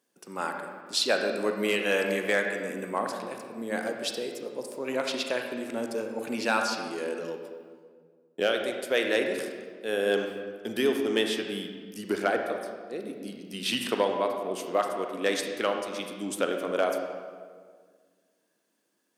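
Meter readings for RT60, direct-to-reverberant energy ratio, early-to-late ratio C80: 1.8 s, 3.5 dB, 6.0 dB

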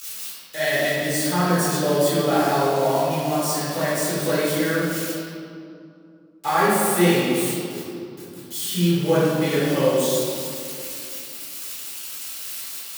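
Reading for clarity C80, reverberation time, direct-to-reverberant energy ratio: -1.0 dB, 2.6 s, -12.0 dB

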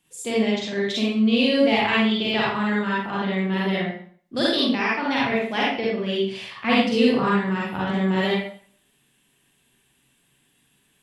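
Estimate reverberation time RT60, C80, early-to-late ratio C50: 0.50 s, 3.5 dB, -2.0 dB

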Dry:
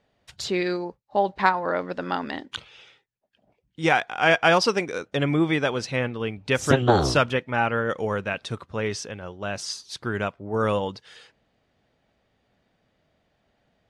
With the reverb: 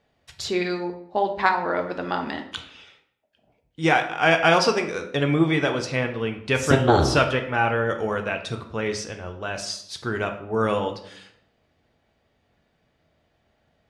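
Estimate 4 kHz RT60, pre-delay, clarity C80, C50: 0.50 s, 3 ms, 13.0 dB, 10.0 dB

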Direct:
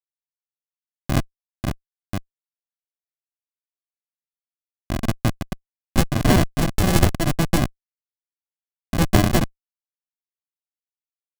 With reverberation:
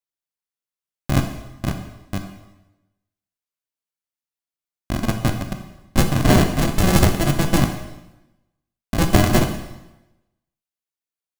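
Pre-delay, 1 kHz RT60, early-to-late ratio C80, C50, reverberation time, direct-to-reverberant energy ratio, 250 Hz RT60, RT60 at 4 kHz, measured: 8 ms, 0.95 s, 10.0 dB, 8.0 dB, 0.95 s, 5.0 dB, 1.0 s, 0.90 s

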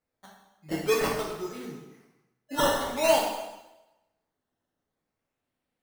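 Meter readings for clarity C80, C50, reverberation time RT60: 5.0 dB, 2.5 dB, 0.95 s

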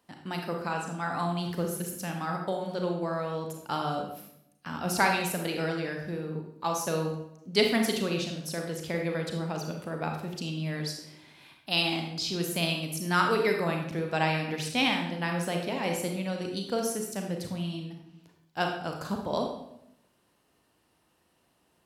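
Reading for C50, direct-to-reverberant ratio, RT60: 4.5 dB, 2.0 dB, 0.80 s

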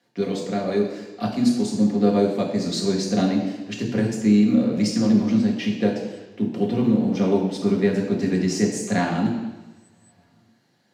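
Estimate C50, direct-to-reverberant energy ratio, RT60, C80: 5.0 dB, -2.0 dB, 1.1 s, 7.0 dB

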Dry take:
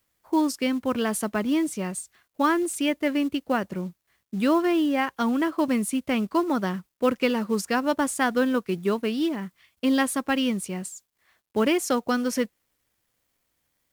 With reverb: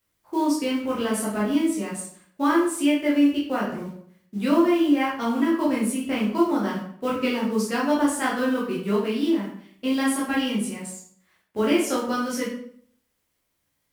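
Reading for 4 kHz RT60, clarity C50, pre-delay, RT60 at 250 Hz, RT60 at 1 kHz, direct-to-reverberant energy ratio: 0.45 s, 4.0 dB, 9 ms, 0.65 s, 0.55 s, -6.0 dB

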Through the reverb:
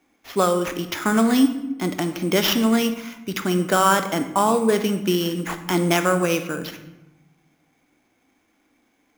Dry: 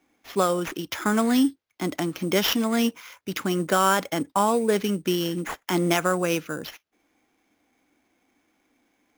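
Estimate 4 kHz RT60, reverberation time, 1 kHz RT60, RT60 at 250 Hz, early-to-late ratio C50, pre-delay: 0.60 s, 0.95 s, 0.95 s, 1.3 s, 10.5 dB, 22 ms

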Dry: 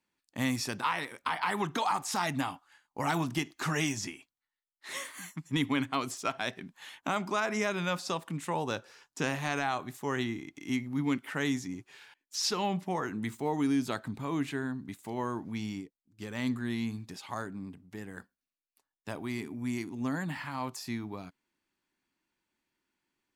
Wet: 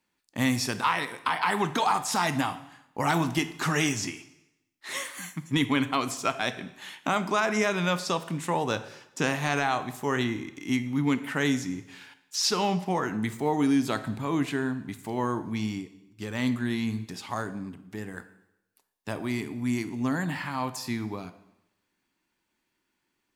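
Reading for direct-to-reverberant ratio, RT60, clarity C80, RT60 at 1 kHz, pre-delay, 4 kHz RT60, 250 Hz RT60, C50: 11.5 dB, 0.85 s, 16.0 dB, 0.90 s, 6 ms, 0.85 s, 0.85 s, 14.0 dB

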